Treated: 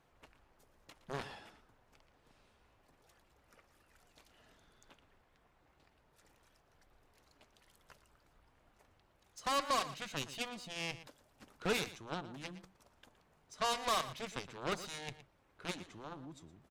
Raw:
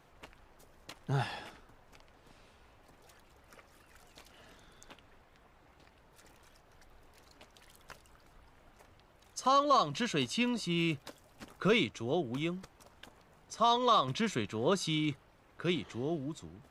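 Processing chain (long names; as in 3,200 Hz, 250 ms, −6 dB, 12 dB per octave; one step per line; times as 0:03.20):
harmonic generator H 5 −26 dB, 7 −10 dB, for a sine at −16.5 dBFS
slap from a distant wall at 20 metres, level −14 dB
level −8 dB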